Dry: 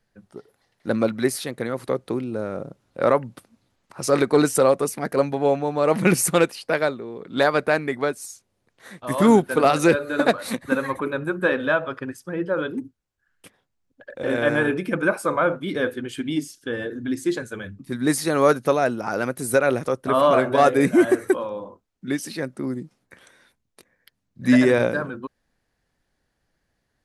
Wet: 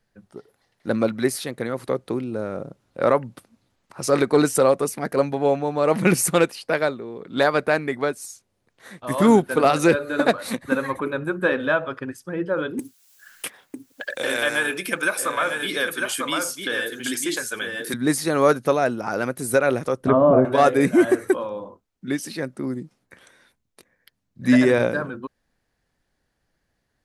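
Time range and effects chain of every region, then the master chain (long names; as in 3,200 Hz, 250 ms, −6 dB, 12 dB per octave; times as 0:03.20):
0:12.79–0:17.94: spectral tilt +4.5 dB per octave + single-tap delay 949 ms −7 dB + multiband upward and downward compressor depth 70%
0:20.00–0:20.45: treble cut that deepens with the level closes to 780 Hz, closed at −15 dBFS + low-shelf EQ 430 Hz +9 dB
whole clip: no processing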